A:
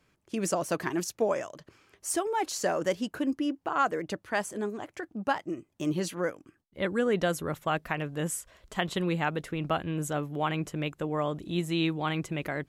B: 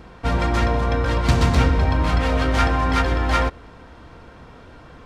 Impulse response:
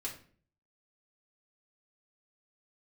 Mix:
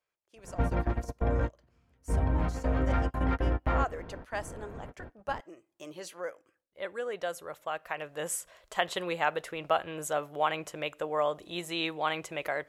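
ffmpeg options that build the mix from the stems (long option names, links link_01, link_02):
-filter_complex "[0:a]lowshelf=frequency=370:width_type=q:width=1.5:gain=-12.5,afade=type=in:start_time=2.74:duration=0.78:silence=0.316228,afade=type=in:start_time=7.79:duration=0.55:silence=0.398107,asplit=3[link_01][link_02][link_03];[link_02]volume=-17.5dB[link_04];[1:a]lowpass=1400,equalizer=frequency=1100:width=1.9:gain=-5.5,acompressor=threshold=-23dB:ratio=10,adelay=350,volume=0dB[link_05];[link_03]apad=whole_len=238278[link_06];[link_05][link_06]sidechaingate=range=-41dB:threshold=-51dB:ratio=16:detection=peak[link_07];[2:a]atrim=start_sample=2205[link_08];[link_04][link_08]afir=irnorm=-1:irlink=0[link_09];[link_01][link_07][link_09]amix=inputs=3:normalize=0"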